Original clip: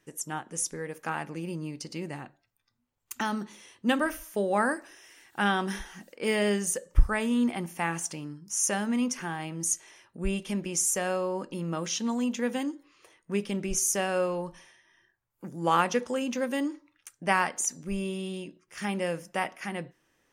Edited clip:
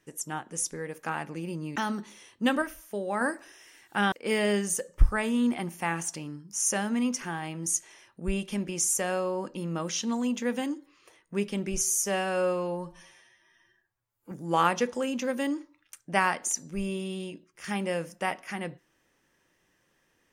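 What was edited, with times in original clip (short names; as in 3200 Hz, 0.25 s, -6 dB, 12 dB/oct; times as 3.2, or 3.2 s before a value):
1.76–3.19 cut
4.05–4.64 gain -5 dB
5.55–6.09 cut
13.78–15.45 stretch 1.5×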